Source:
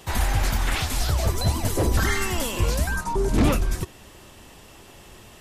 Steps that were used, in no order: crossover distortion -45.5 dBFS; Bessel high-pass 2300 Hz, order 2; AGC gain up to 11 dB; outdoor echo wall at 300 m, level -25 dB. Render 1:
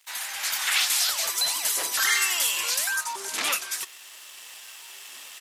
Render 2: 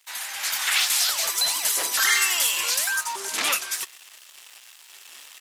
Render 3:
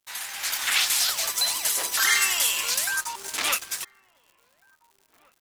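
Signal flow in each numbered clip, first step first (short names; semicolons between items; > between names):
outdoor echo > AGC > crossover distortion > Bessel high-pass; outdoor echo > crossover distortion > Bessel high-pass > AGC; Bessel high-pass > crossover distortion > outdoor echo > AGC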